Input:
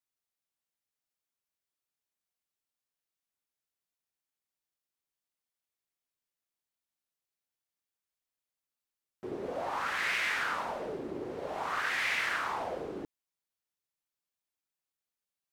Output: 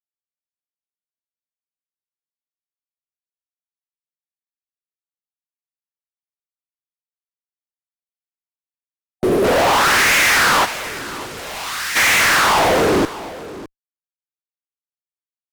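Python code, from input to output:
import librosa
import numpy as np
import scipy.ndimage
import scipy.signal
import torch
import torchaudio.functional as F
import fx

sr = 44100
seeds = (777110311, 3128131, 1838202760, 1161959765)

y = fx.fuzz(x, sr, gain_db=50.0, gate_db=-54.0)
y = fx.spec_box(y, sr, start_s=9.16, length_s=0.29, low_hz=740.0, high_hz=8700.0, gain_db=-7)
y = fx.tone_stack(y, sr, knobs='5-5-5', at=(10.64, 11.95), fade=0.02)
y = fx.echo_multitap(y, sr, ms=(239, 608), db=(-20.0, -17.0))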